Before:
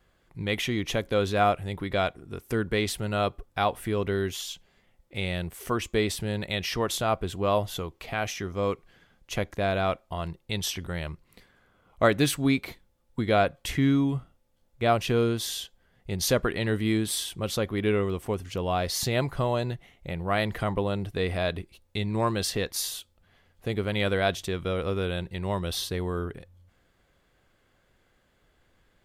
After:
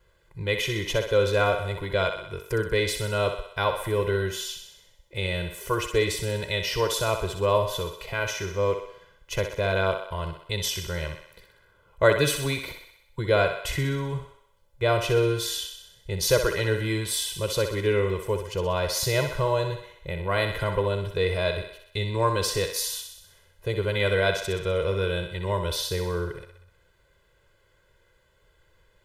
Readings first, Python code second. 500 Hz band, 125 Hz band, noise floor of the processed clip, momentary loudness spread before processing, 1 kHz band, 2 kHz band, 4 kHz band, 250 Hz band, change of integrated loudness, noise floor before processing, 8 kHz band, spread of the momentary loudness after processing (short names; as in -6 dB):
+3.5 dB, +2.0 dB, -64 dBFS, 11 LU, -0.5 dB, +3.5 dB, +2.5 dB, -5.0 dB, +2.0 dB, -68 dBFS, +2.5 dB, 11 LU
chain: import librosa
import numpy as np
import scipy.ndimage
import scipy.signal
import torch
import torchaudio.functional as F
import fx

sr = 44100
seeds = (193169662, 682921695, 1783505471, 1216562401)

y = x + 0.97 * np.pad(x, (int(2.0 * sr / 1000.0), 0))[:len(x)]
y = fx.echo_thinned(y, sr, ms=63, feedback_pct=61, hz=350.0, wet_db=-7.0)
y = y * librosa.db_to_amplitude(-1.5)